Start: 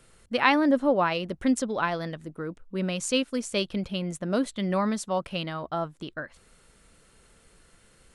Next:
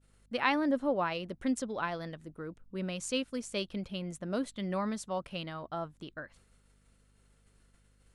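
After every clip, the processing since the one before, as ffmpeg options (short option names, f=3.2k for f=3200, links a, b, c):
-af "agate=range=-33dB:threshold=-52dB:ratio=3:detection=peak,aeval=exprs='val(0)+0.00126*(sin(2*PI*50*n/s)+sin(2*PI*2*50*n/s)/2+sin(2*PI*3*50*n/s)/3+sin(2*PI*4*50*n/s)/4+sin(2*PI*5*50*n/s)/5)':c=same,volume=-7.5dB"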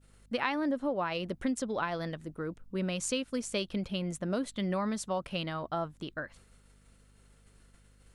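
-af "acompressor=threshold=-33dB:ratio=5,volume=5dB"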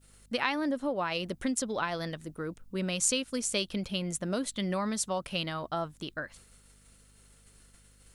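-af "highshelf=f=3.6k:g=10.5"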